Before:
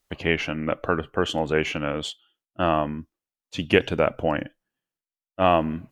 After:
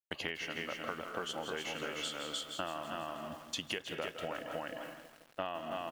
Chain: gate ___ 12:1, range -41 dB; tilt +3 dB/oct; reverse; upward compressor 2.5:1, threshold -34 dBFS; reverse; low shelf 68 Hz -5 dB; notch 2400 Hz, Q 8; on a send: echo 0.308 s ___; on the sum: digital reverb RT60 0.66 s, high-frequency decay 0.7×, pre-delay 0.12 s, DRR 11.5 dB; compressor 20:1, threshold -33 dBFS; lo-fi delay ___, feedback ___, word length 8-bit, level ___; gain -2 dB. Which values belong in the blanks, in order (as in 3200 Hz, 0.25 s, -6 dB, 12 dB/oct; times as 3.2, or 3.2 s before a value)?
-52 dBFS, -4.5 dB, 0.163 s, 80%, -12 dB